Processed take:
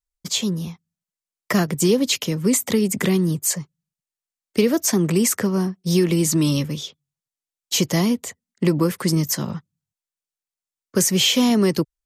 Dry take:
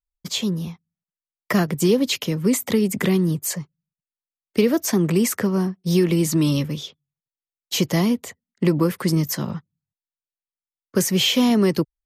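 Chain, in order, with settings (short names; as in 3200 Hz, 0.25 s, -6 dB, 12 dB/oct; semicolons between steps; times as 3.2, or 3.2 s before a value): bell 7400 Hz +6 dB 1.2 oct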